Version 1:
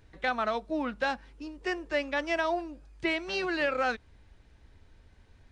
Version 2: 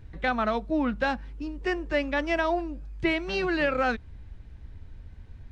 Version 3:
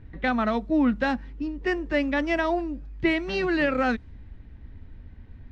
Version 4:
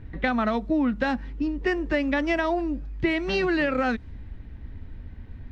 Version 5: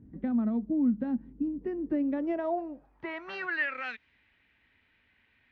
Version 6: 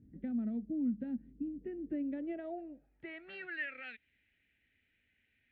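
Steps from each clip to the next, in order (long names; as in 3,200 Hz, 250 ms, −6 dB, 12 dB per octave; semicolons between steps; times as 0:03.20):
bass and treble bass +11 dB, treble −5 dB; level +2.5 dB
low-pass that shuts in the quiet parts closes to 2,900 Hz, open at −21.5 dBFS; hollow resonant body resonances 250/1,900 Hz, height 7 dB, ringing for 25 ms
downward compressor, threshold −25 dBFS, peak gain reduction 7 dB; level +4.5 dB
band-pass filter sweep 230 Hz → 2,500 Hz, 0:01.74–0:03.90
phaser with its sweep stopped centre 2,500 Hz, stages 4; level −7 dB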